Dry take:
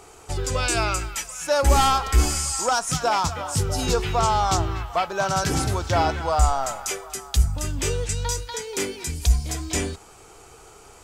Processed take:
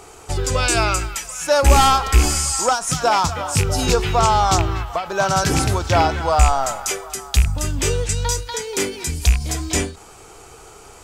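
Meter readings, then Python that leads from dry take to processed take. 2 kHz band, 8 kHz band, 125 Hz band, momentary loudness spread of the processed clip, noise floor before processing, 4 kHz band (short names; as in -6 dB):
+5.0 dB, +5.0 dB, +4.5 dB, 9 LU, -48 dBFS, +5.0 dB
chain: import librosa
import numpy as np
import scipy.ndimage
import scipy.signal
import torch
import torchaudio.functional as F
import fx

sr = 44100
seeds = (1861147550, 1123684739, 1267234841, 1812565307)

y = fx.rattle_buzz(x, sr, strikes_db=-18.0, level_db=-16.0)
y = fx.end_taper(y, sr, db_per_s=140.0)
y = y * 10.0 ** (5.0 / 20.0)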